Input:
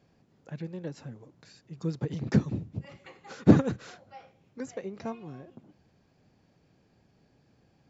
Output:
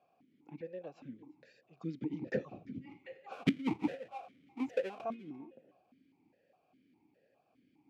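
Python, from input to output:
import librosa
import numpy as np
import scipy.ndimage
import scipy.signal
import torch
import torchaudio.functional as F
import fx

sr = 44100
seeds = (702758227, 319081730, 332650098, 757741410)

p1 = fx.halfwave_hold(x, sr, at=(3.31, 5.03), fade=0.02)
p2 = p1 + fx.echo_single(p1, sr, ms=346, db=-19.5, dry=0)
p3 = fx.gate_flip(p2, sr, shuts_db=-10.0, range_db=-27)
p4 = fx.vowel_held(p3, sr, hz=4.9)
y = p4 * librosa.db_to_amplitude(6.5)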